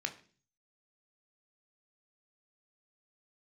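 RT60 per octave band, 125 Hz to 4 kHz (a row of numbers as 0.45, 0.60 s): 0.75, 0.60, 0.45, 0.35, 0.40, 0.45 s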